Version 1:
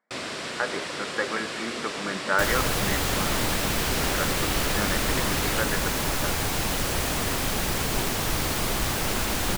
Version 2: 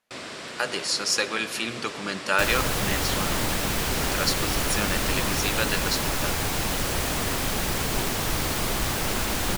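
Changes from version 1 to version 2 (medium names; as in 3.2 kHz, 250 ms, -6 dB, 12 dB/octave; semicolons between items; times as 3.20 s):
speech: remove brick-wall FIR band-pass 160–2300 Hz; first sound -4.0 dB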